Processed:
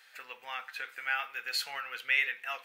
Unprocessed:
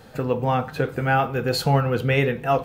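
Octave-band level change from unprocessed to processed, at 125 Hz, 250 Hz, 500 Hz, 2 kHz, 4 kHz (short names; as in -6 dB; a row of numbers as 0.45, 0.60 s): under -40 dB, under -40 dB, -29.0 dB, -3.0 dB, -4.5 dB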